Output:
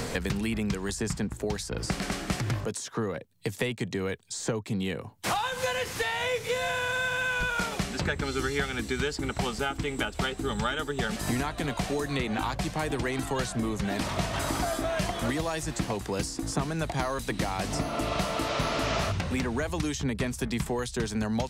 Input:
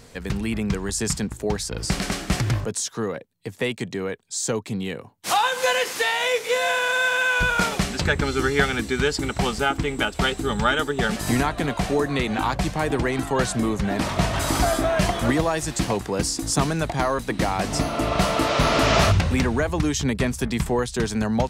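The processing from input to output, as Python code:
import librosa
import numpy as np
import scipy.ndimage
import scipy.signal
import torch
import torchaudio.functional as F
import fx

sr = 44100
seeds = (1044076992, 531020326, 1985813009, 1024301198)

y = fx.band_squash(x, sr, depth_pct=100)
y = y * 10.0 ** (-8.0 / 20.0)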